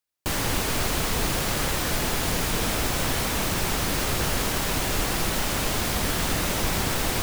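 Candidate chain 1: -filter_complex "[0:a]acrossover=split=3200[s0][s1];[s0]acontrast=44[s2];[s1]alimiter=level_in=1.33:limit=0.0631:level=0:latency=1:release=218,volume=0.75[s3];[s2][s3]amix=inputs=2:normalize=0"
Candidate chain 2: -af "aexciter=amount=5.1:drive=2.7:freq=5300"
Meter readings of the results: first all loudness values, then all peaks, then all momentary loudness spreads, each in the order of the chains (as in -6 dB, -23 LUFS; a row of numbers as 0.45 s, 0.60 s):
-22.0 LUFS, -14.5 LUFS; -8.5 dBFS, -4.0 dBFS; 1 LU, 0 LU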